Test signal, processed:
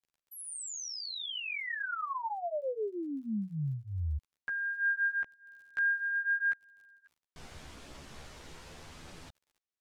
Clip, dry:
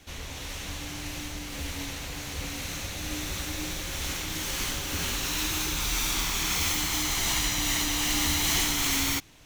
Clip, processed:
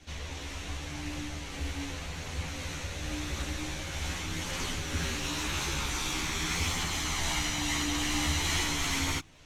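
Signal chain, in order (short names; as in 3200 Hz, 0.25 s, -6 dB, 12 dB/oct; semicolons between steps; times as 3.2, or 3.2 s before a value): LPF 7600 Hz 12 dB/oct; dynamic EQ 4700 Hz, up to -4 dB, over -44 dBFS, Q 0.84; crackle 20/s -53 dBFS; chorus voices 2, 0.44 Hz, delay 13 ms, depth 1.5 ms; in parallel at -12 dB: wavefolder -24.5 dBFS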